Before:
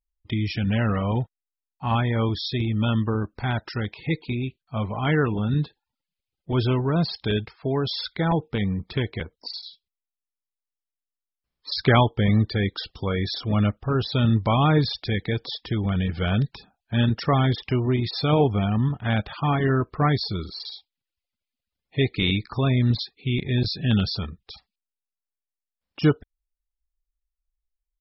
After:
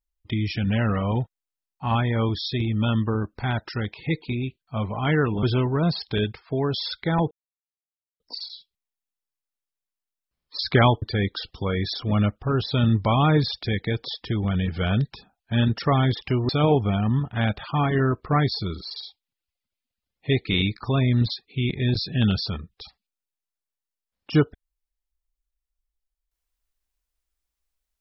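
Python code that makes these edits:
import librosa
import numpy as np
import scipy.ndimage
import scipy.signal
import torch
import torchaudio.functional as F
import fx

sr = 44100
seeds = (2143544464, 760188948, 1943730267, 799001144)

y = fx.edit(x, sr, fx.cut(start_s=5.43, length_s=1.13),
    fx.silence(start_s=8.44, length_s=0.89),
    fx.cut(start_s=12.15, length_s=0.28),
    fx.cut(start_s=17.9, length_s=0.28), tone=tone)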